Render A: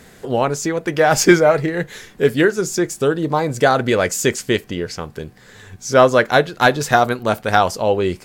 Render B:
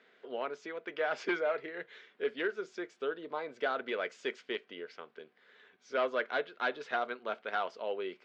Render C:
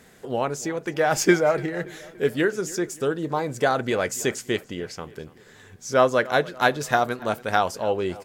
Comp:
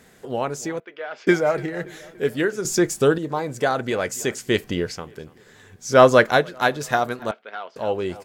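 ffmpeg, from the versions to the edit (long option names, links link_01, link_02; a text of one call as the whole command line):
ffmpeg -i take0.wav -i take1.wav -i take2.wav -filter_complex "[1:a]asplit=2[link_01][link_02];[0:a]asplit=3[link_03][link_04][link_05];[2:a]asplit=6[link_06][link_07][link_08][link_09][link_10][link_11];[link_06]atrim=end=0.802[link_12];[link_01]atrim=start=0.798:end=1.272[link_13];[link_07]atrim=start=1.268:end=2.652[link_14];[link_03]atrim=start=2.648:end=3.182[link_15];[link_08]atrim=start=3.178:end=4.64[link_16];[link_04]atrim=start=4.4:end=5.04[link_17];[link_09]atrim=start=4.8:end=6.04[link_18];[link_05]atrim=start=5.8:end=6.46[link_19];[link_10]atrim=start=6.22:end=7.312[link_20];[link_02]atrim=start=7.308:end=7.762[link_21];[link_11]atrim=start=7.758[link_22];[link_12][link_13]acrossfade=duration=0.004:curve1=hsin:curve2=hsin[link_23];[link_23][link_14]acrossfade=duration=0.004:curve1=hsin:curve2=hsin[link_24];[link_24][link_15]acrossfade=duration=0.004:curve1=hsin:curve2=hsin[link_25];[link_25][link_16]acrossfade=duration=0.004:curve1=hsin:curve2=hsin[link_26];[link_26][link_17]acrossfade=duration=0.24:curve1=tri:curve2=tri[link_27];[link_27][link_18]acrossfade=duration=0.24:curve1=tri:curve2=tri[link_28];[link_28][link_19]acrossfade=duration=0.24:curve1=tri:curve2=tri[link_29];[link_29][link_20]acrossfade=duration=0.24:curve1=tri:curve2=tri[link_30];[link_30][link_21]acrossfade=duration=0.004:curve1=hsin:curve2=hsin[link_31];[link_31][link_22]acrossfade=duration=0.004:curve1=hsin:curve2=hsin" out.wav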